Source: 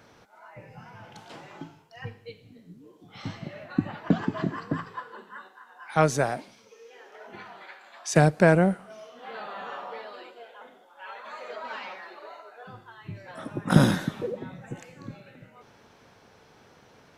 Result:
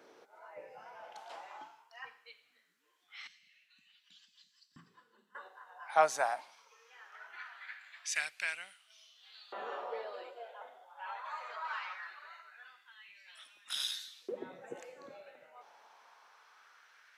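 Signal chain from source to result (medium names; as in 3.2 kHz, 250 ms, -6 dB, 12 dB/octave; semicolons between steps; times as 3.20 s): dynamic bell 430 Hz, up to -6 dB, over -37 dBFS, Q 1.2; LFO high-pass saw up 0.21 Hz 360–4600 Hz; 3.27–5.35 s: FFT filter 210 Hz 0 dB, 450 Hz -27 dB, 680 Hz -26 dB, 6.1 kHz -6 dB; trim -6.5 dB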